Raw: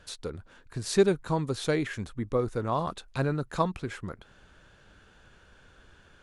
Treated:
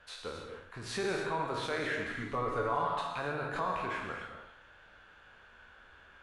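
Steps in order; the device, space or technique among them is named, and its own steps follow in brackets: spectral sustain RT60 0.58 s; DJ mixer with the lows and highs turned down (three-band isolator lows -13 dB, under 600 Hz, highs -15 dB, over 3.2 kHz; peak limiter -25 dBFS, peak gain reduction 11 dB); 2.09–3.07 s: comb 7 ms, depth 82%; gated-style reverb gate 310 ms flat, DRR 2.5 dB

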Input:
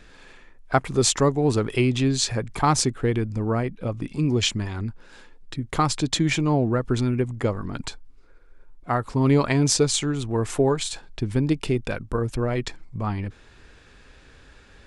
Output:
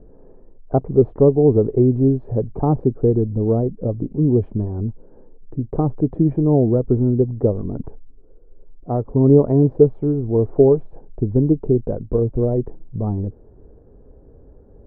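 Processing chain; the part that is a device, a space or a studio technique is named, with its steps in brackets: under water (low-pass 650 Hz 24 dB/octave; peaking EQ 430 Hz +4.5 dB 0.36 oct); trim +5.5 dB

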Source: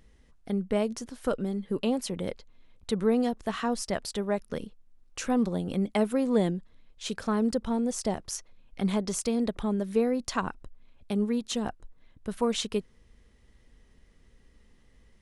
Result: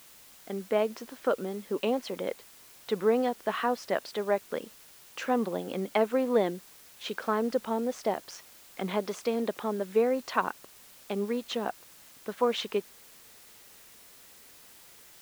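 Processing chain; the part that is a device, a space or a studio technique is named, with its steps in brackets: dictaphone (band-pass 380–3000 Hz; level rider gain up to 7 dB; wow and flutter; white noise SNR 22 dB); trim -3.5 dB

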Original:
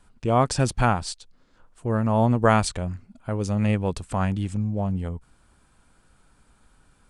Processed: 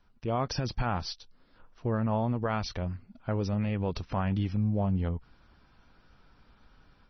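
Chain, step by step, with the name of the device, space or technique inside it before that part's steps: low-bitrate web radio (level rider gain up to 7.5 dB; peak limiter -12 dBFS, peak gain reduction 10 dB; trim -7.5 dB; MP3 24 kbps 24 kHz)

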